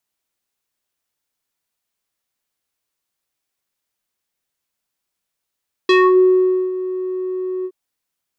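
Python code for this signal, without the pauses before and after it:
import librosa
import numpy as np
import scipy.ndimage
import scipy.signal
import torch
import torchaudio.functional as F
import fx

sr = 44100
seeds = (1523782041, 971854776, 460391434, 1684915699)

y = fx.sub_voice(sr, note=66, wave='square', cutoff_hz=510.0, q=2.2, env_oct=3.0, env_s=0.28, attack_ms=4.1, decay_s=0.82, sustain_db=-15.5, release_s=0.06, note_s=1.76, slope=12)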